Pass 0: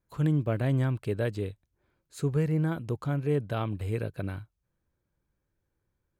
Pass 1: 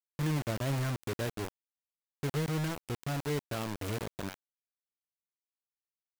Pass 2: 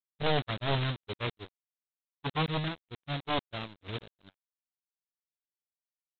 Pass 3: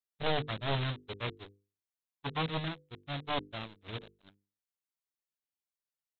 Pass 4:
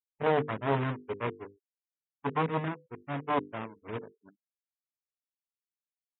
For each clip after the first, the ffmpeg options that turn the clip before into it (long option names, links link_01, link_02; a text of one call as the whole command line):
ffmpeg -i in.wav -af "acrusher=bits=4:mix=0:aa=0.000001,volume=-6.5dB" out.wav
ffmpeg -i in.wav -af "aresample=8000,aeval=exprs='0.0794*sin(PI/2*3.98*val(0)/0.0794)':channel_layout=same,aresample=44100,agate=range=-48dB:threshold=-27dB:ratio=16:detection=peak,volume=2dB" out.wav
ffmpeg -i in.wav -af "bandreject=frequency=50:width_type=h:width=6,bandreject=frequency=100:width_type=h:width=6,bandreject=frequency=150:width_type=h:width=6,bandreject=frequency=200:width_type=h:width=6,bandreject=frequency=250:width_type=h:width=6,bandreject=frequency=300:width_type=h:width=6,bandreject=frequency=350:width_type=h:width=6,bandreject=frequency=400:width_type=h:width=6,bandreject=frequency=450:width_type=h:width=6,bandreject=frequency=500:width_type=h:width=6,volume=-2.5dB" out.wav
ffmpeg -i in.wav -af "highpass=120,equalizer=frequency=260:width_type=q:width=4:gain=6,equalizer=frequency=430:width_type=q:width=4:gain=7,equalizer=frequency=990:width_type=q:width=4:gain=6,lowpass=frequency=2300:width=0.5412,lowpass=frequency=2300:width=1.3066,afftfilt=real='re*gte(hypot(re,im),0.00224)':imag='im*gte(hypot(re,im),0.00224)':win_size=1024:overlap=0.75,volume=3dB" out.wav